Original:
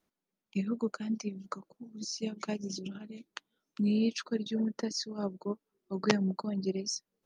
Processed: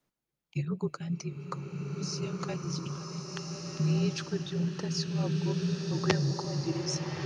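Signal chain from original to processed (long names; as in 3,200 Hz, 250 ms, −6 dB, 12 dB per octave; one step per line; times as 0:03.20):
frequency shifter −50 Hz
slow-attack reverb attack 1,540 ms, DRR 1 dB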